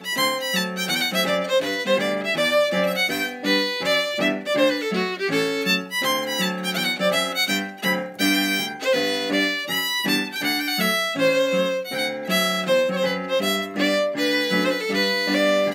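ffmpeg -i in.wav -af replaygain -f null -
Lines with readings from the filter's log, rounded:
track_gain = +1.8 dB
track_peak = 0.322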